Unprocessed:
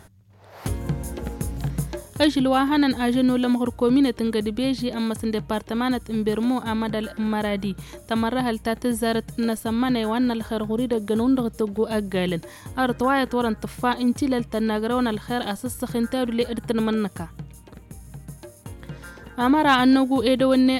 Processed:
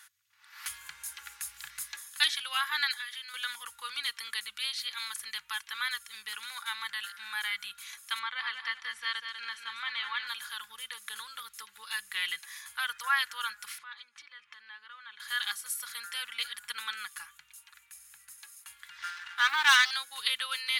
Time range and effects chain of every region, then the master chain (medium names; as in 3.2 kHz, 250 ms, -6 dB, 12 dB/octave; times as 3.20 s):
2.94–3.34 s: high-pass 1.2 kHz 6 dB/octave + treble shelf 5 kHz -5 dB + compression, threshold -31 dBFS
8.19–10.27 s: low-pass 3.4 kHz + feedback delay 195 ms, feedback 33%, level -7 dB
13.78–15.20 s: compression 12:1, threshold -31 dBFS + band-pass 140–3200 Hz
18.98–19.91 s: low-pass 4.6 kHz + waveshaping leveller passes 2
whole clip: inverse Chebyshev high-pass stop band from 680 Hz, stop band 40 dB; comb 3.5 ms, depth 44%